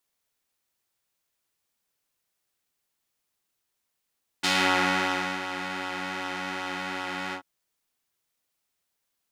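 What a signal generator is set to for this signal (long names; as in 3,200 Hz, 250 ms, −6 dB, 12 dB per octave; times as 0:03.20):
subtractive patch with pulse-width modulation F#3, oscillator 2 square, interval +7 semitones, detune 29 cents, oscillator 2 level −3 dB, sub −7 dB, filter bandpass, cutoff 1,100 Hz, Q 0.92, attack 15 ms, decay 0.95 s, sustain −12.5 dB, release 0.09 s, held 2.90 s, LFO 2.6 Hz, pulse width 27%, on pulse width 19%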